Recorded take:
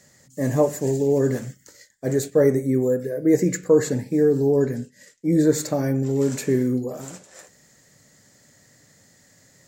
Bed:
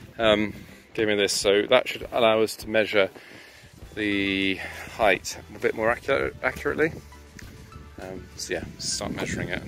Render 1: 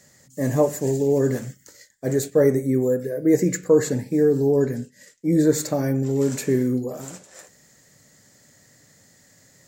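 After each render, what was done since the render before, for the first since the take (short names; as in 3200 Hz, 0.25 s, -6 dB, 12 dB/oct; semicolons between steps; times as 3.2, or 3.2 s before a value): high shelf 11000 Hz +4 dB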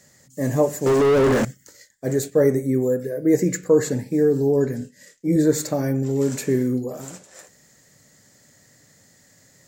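0.86–1.45 overdrive pedal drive 40 dB, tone 1200 Hz, clips at -10 dBFS; 4.78–5.36 doubler 28 ms -6.5 dB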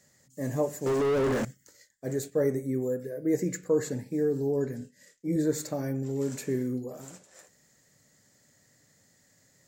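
gain -9 dB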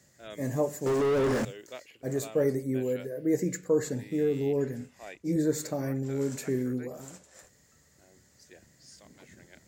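add bed -25 dB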